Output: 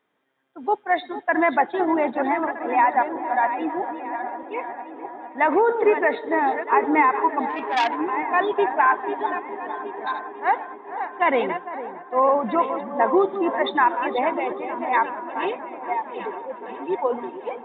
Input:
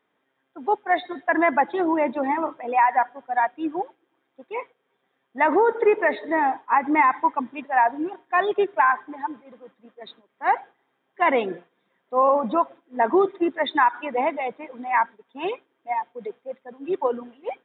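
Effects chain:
feedback delay that plays each chunk backwards 633 ms, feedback 46%, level −9.5 dB
delay with a low-pass on its return 453 ms, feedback 76%, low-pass 1,500 Hz, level −13 dB
0:07.49–0:07.97: saturating transformer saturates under 2,000 Hz

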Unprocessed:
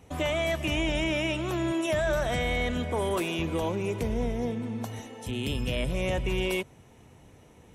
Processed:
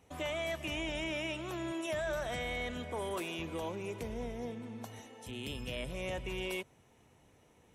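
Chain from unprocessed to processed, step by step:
low-shelf EQ 300 Hz −6 dB
level −7.5 dB

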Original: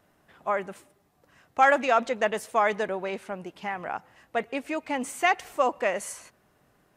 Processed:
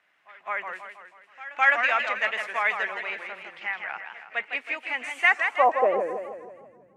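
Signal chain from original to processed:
echo ahead of the sound 210 ms −20.5 dB
band-pass filter sweep 2,200 Hz → 210 Hz, 0:05.21–0:06.22
feedback echo with a swinging delay time 161 ms, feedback 51%, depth 188 cents, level −6.5 dB
level +8 dB

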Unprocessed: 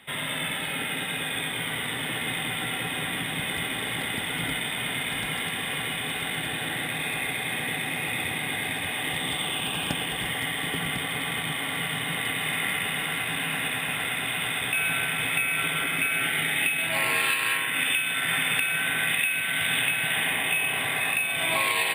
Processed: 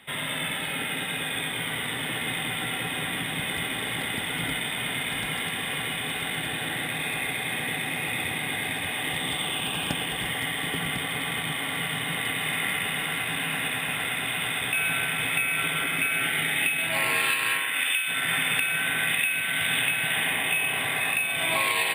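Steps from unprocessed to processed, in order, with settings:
0:17.58–0:18.07: high-pass filter 340 Hz → 1,300 Hz 6 dB per octave

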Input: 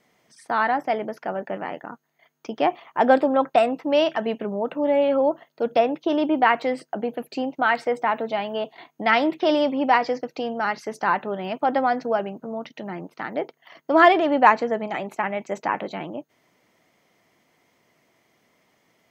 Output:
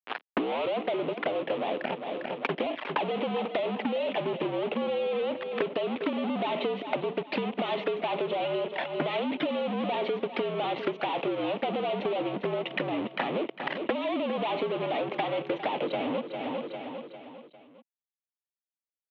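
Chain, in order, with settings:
turntable start at the beginning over 0.83 s
fuzz pedal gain 40 dB, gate −43 dBFS
flanger swept by the level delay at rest 10.2 ms, full sweep at −15 dBFS
power curve on the samples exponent 0.7
transient designer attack +8 dB, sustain +2 dB
single-sideband voice off tune −59 Hz 320–3,300 Hz
on a send: repeating echo 401 ms, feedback 43%, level −14 dB
on the sum: downward compressor 6 to 1, threshold −28 dBFS, peak gain reduction 18.5 dB

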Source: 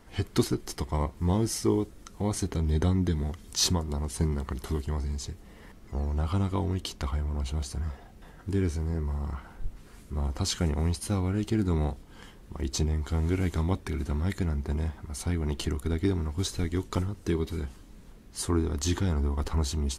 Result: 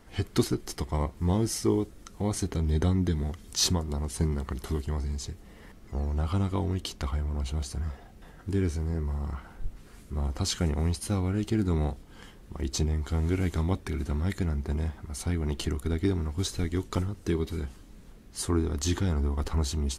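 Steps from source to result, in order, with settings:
parametric band 970 Hz −2.5 dB 0.21 octaves

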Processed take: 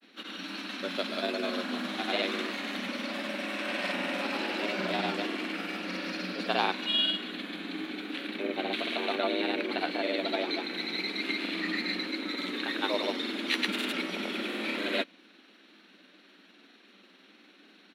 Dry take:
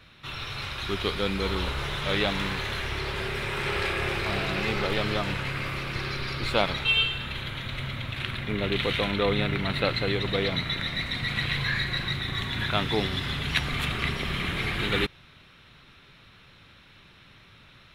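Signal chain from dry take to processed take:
frequency shifter +180 Hz
granular cloud, pitch spread up and down by 0 semitones
level −3 dB

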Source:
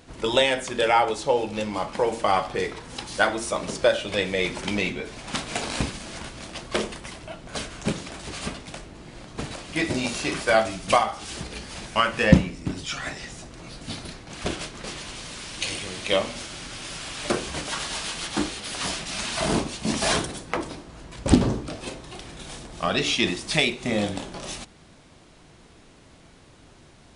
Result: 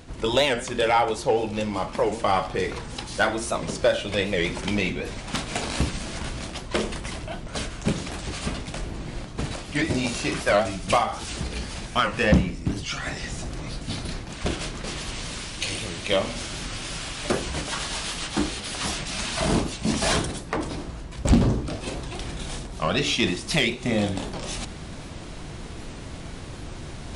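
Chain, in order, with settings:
reversed playback
upward compression, threshold −28 dBFS
reversed playback
hard clipping −9.5 dBFS, distortion −17 dB
low-shelf EQ 140 Hz +8 dB
soft clipping −9.5 dBFS, distortion −17 dB
wow of a warped record 78 rpm, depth 160 cents

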